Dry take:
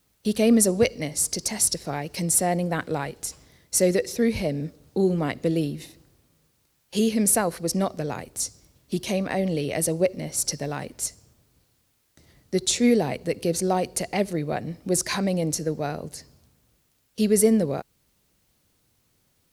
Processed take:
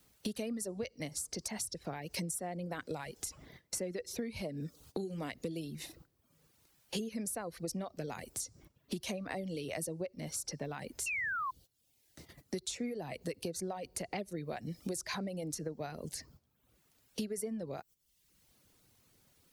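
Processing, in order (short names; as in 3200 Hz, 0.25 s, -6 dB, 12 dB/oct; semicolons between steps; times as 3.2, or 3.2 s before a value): compressor 8:1, threshold -33 dBFS, peak gain reduction 19 dB; painted sound fall, 11.06–11.51, 1000–2800 Hz -34 dBFS; gate -55 dBFS, range -9 dB; reverb removal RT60 0.65 s; three-band squash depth 40%; gain -2 dB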